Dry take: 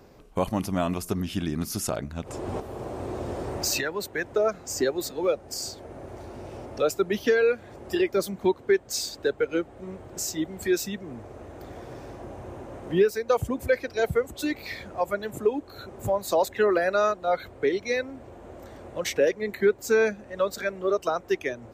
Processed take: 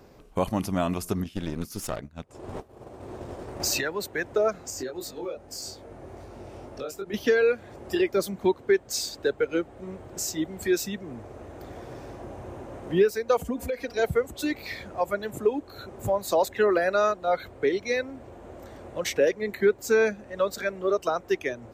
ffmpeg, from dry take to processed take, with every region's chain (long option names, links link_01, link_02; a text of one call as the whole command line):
ffmpeg -i in.wav -filter_complex "[0:a]asettb=1/sr,asplit=3[link_01][link_02][link_03];[link_01]atrim=end=1.244[link_04];[link_02]atrim=start=1.24:end=3.6,asetpts=PTS-STARTPTS,afade=type=in:duration=0.004:curve=qsin,afade=type=out:start_time=2.356:duration=0.004:curve=qsin,agate=range=-33dB:threshold=-28dB:ratio=3:release=100:detection=peak,aeval=exprs='clip(val(0),-1,0.0141)':channel_layout=same[link_05];[link_03]atrim=start=3.596[link_06];[link_04][link_05]acrossfade=duration=0.004:curve1=hsin:curve2=qsin[link_07];[link_07][link_06]acrossfade=duration=0.004:curve1=qsin:curve2=hsin,asettb=1/sr,asplit=3[link_08][link_09][link_10];[link_08]atrim=end=4.704[link_11];[link_09]atrim=start=4.7:end=7.14,asetpts=PTS-STARTPTS,afade=type=in:duration=0.004:curve=qsin,afade=type=out:start_time=2.436:duration=0.004:curve=qsin,acompressor=threshold=-29dB:ratio=3:attack=3.2:release=140:knee=1:detection=peak,flanger=delay=19.5:depth=4.3:speed=2.5[link_12];[link_10]atrim=start=7.136[link_13];[link_11][link_12]acrossfade=duration=0.004:curve1=hsin:curve2=qsin[link_14];[link_14][link_13]acrossfade=duration=0.004:curve1=qsin:curve2=hsin,asettb=1/sr,asplit=3[link_15][link_16][link_17];[link_15]atrim=end=13.394[link_18];[link_16]atrim=start=13.39:end=13.97,asetpts=PTS-STARTPTS,afade=type=in:duration=0.004:curve=qsin,afade=type=out:start_time=0.576:duration=0.004:curve=qsin,acompressor=threshold=-30dB:ratio=4:attack=3.2:release=140:knee=1:detection=peak,aecho=1:1:4.2:0.88,atrim=end_sample=25578[link_19];[link_17]atrim=start=13.966[link_20];[link_18][link_19]acrossfade=duration=0.004:curve1=hsin:curve2=qsin[link_21];[link_21][link_20]acrossfade=duration=0.004:curve1=qsin:curve2=hsin" out.wav